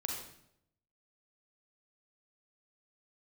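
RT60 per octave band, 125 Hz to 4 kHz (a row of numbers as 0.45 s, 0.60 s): 1.0 s, 0.85 s, 0.80 s, 0.70 s, 0.65 s, 0.60 s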